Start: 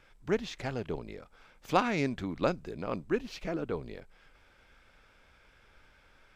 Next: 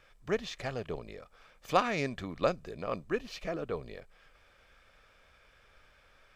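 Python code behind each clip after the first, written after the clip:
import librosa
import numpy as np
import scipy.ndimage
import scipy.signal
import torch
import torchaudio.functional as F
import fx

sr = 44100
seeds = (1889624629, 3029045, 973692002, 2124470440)

y = fx.low_shelf(x, sr, hz=280.0, db=-4.5)
y = y + 0.34 * np.pad(y, (int(1.7 * sr / 1000.0), 0))[:len(y)]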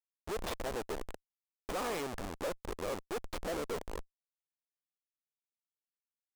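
y = fx.schmitt(x, sr, flips_db=-38.0)
y = fx.graphic_eq(y, sr, hz=(125, 500, 1000, 8000), db=(-11, 5, 4, 3))
y = F.gain(torch.from_numpy(y), -1.0).numpy()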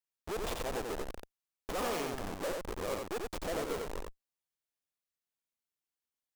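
y = fx.tracing_dist(x, sr, depth_ms=0.38)
y = y + 10.0 ** (-3.5 / 20.0) * np.pad(y, (int(89 * sr / 1000.0), 0))[:len(y)]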